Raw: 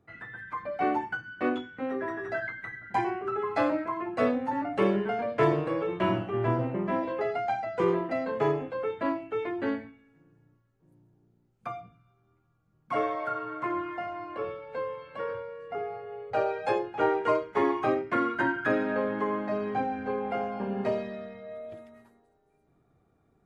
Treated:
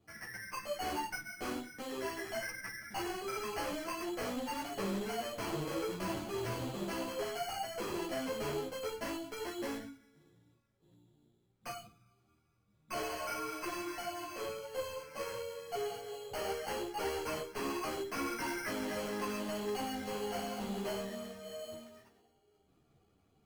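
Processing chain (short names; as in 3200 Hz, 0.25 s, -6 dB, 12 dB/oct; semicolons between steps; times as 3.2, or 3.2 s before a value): sample-and-hold 12×; tube stage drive 33 dB, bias 0.3; ensemble effect; gain +1 dB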